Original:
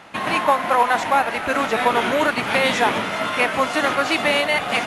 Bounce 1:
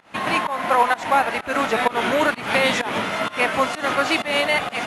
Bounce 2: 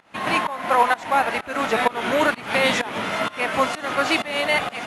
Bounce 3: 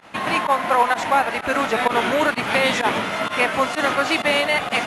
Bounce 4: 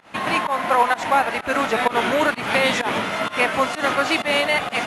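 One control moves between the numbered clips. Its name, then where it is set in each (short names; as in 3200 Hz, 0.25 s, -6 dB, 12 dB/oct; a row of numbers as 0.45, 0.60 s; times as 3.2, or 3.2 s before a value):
pump, release: 212, 381, 62, 137 ms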